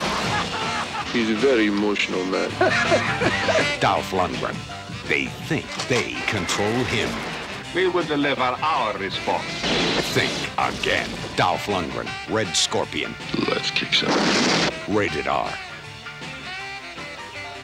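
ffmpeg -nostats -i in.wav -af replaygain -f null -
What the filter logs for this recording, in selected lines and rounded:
track_gain = +2.1 dB
track_peak = 0.380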